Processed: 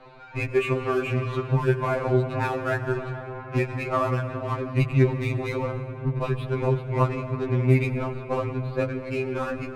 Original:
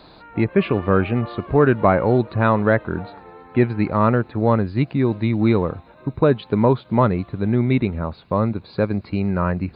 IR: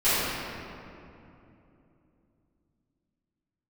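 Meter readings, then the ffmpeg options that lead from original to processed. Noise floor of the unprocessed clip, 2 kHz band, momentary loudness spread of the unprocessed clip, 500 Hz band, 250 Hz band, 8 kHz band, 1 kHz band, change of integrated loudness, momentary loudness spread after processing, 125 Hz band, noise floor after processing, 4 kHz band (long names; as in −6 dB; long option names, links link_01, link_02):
−48 dBFS, −3.5 dB, 8 LU, −6.0 dB, −10.0 dB, can't be measured, −6.5 dB, −6.0 dB, 8 LU, −3.0 dB, −38 dBFS, −3.0 dB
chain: -filter_complex "[0:a]adynamicsmooth=sensitivity=7:basefreq=1300,equalizer=frequency=250:width_type=o:width=0.33:gain=-10,equalizer=frequency=800:width_type=o:width=0.33:gain=-3,equalizer=frequency=2500:width_type=o:width=0.33:gain=10,acompressor=threshold=-22dB:ratio=6,bandreject=frequency=60:width_type=h:width=6,bandreject=frequency=120:width_type=h:width=6,tremolo=f=160:d=0.571,asplit=2[link_01][link_02];[1:a]atrim=start_sample=2205,asetrate=26901,aresample=44100,adelay=87[link_03];[link_02][link_03]afir=irnorm=-1:irlink=0,volume=-30dB[link_04];[link_01][link_04]amix=inputs=2:normalize=0,afftfilt=real='re*2.45*eq(mod(b,6),0)':imag='im*2.45*eq(mod(b,6),0)':win_size=2048:overlap=0.75,volume=6.5dB"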